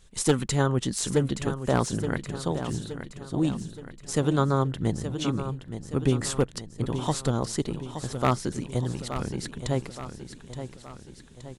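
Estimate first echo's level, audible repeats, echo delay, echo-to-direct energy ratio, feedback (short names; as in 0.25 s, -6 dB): -10.0 dB, 5, 0.872 s, -8.5 dB, 51%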